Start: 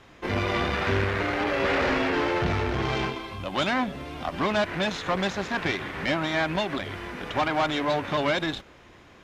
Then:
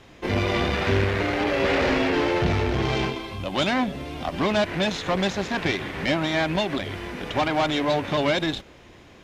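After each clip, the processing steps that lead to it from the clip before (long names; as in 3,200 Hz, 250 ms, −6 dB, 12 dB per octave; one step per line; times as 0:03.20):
parametric band 1,300 Hz −5.5 dB 1.2 octaves
level +4 dB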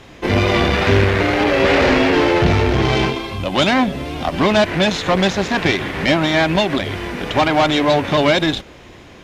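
tape wow and flutter 22 cents
level +8 dB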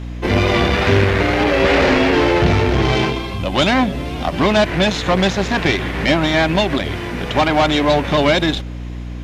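mains hum 60 Hz, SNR 11 dB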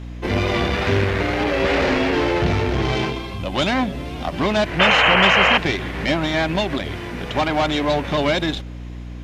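sound drawn into the spectrogram noise, 0:04.79–0:05.58, 440–3,200 Hz −10 dBFS
level −5 dB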